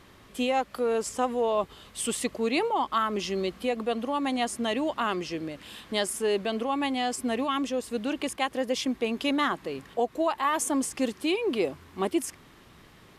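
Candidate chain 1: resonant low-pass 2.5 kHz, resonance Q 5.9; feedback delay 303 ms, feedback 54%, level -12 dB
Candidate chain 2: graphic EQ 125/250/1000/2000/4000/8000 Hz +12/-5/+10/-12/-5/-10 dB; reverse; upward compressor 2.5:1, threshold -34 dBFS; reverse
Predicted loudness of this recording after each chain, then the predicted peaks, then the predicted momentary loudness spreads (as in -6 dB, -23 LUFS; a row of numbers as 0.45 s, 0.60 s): -25.0 LUFS, -27.5 LUFS; -6.0 dBFS, -11.0 dBFS; 9 LU, 11 LU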